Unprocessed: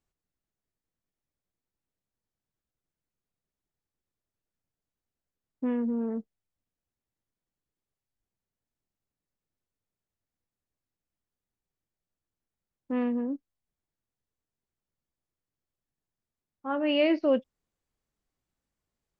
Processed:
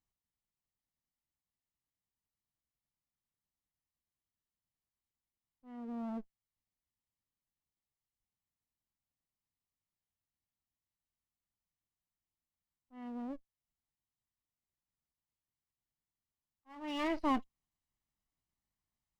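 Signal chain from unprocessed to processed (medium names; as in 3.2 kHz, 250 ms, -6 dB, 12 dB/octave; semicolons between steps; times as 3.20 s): comb filter that takes the minimum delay 1 ms; slow attack 633 ms; trim -5.5 dB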